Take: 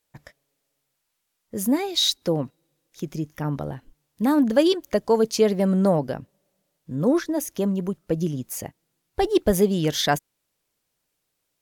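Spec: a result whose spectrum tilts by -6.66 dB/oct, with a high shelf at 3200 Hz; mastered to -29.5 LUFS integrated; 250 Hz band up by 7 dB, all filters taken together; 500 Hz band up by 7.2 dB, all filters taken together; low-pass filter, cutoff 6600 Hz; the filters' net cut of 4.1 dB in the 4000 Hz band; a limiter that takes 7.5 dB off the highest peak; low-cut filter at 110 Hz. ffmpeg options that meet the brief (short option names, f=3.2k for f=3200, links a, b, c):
-af "highpass=110,lowpass=6.6k,equalizer=f=250:t=o:g=7.5,equalizer=f=500:t=o:g=6.5,highshelf=f=3.2k:g=5,equalizer=f=4k:t=o:g=-7.5,volume=-10dB,alimiter=limit=-18dB:level=0:latency=1"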